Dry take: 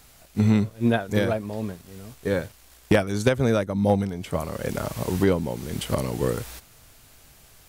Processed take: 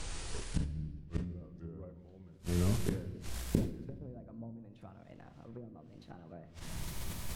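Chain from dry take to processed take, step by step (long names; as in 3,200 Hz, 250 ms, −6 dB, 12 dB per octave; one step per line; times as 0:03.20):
gliding playback speed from 61% → 148%
treble cut that deepens with the level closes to 340 Hz, closed at −15.5 dBFS
low-shelf EQ 170 Hz +8.5 dB
gate with flip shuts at −26 dBFS, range −35 dB
convolution reverb RT60 1.4 s, pre-delay 3 ms, DRR 9 dB
level that may fall only so fast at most 100 dB per second
level +6.5 dB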